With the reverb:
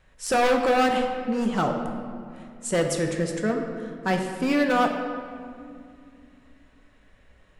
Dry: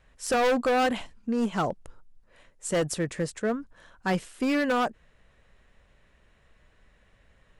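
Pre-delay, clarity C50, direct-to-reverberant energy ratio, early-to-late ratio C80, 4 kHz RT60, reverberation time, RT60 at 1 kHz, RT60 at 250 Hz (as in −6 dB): 5 ms, 4.5 dB, 2.5 dB, 6.0 dB, 1.3 s, 2.3 s, 2.1 s, 3.4 s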